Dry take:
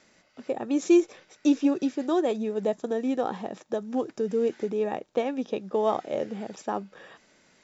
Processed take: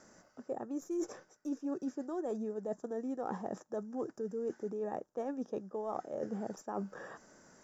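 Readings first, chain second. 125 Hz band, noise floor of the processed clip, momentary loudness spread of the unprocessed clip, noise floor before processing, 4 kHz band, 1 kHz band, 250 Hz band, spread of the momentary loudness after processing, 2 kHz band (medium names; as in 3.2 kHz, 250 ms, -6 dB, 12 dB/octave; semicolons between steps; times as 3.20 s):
no reading, -69 dBFS, 12 LU, -63 dBFS, under -15 dB, -10.0 dB, -12.5 dB, 6 LU, -12.5 dB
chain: tracing distortion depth 0.022 ms; high-order bell 3 kHz -16 dB 1.3 oct; reverse; compression 12:1, threshold -37 dBFS, peak gain reduction 22 dB; reverse; trim +2.5 dB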